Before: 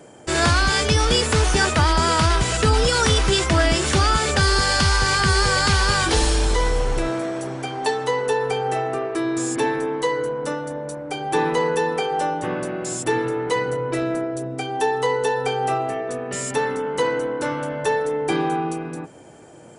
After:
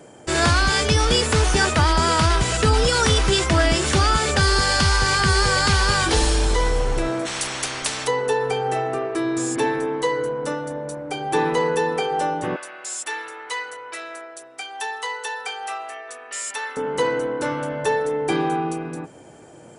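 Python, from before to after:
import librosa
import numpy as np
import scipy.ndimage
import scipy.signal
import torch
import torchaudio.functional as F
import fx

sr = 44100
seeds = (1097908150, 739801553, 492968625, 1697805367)

y = fx.spectral_comp(x, sr, ratio=10.0, at=(7.25, 8.06), fade=0.02)
y = fx.highpass(y, sr, hz=1200.0, slope=12, at=(12.56, 16.77))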